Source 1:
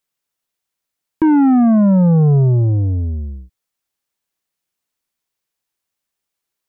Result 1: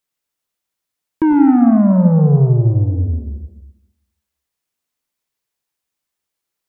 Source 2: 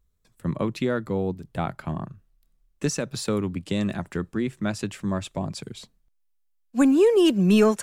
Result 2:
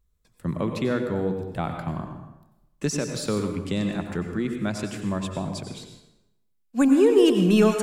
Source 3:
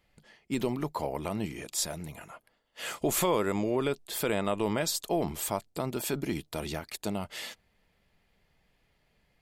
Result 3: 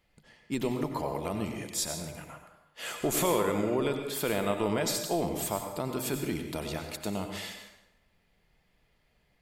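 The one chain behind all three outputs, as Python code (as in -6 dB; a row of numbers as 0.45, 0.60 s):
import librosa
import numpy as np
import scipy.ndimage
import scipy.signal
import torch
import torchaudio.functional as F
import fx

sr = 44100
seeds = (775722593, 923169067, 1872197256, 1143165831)

y = fx.rev_plate(x, sr, seeds[0], rt60_s=0.92, hf_ratio=0.75, predelay_ms=80, drr_db=5.0)
y = F.gain(torch.from_numpy(y), -1.0).numpy()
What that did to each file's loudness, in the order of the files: +0.5, +0.5, 0.0 LU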